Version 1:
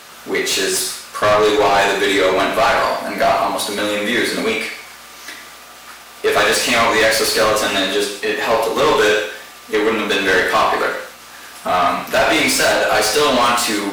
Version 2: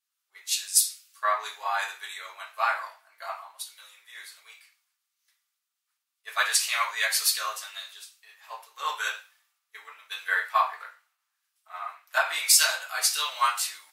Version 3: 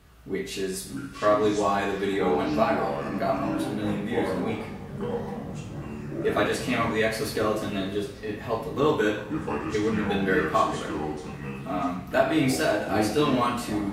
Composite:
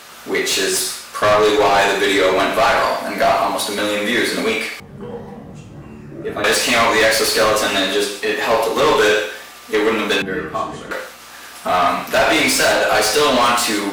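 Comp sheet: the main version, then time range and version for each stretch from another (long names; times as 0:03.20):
1
0:04.80–0:06.44: punch in from 3
0:10.22–0:10.91: punch in from 3
not used: 2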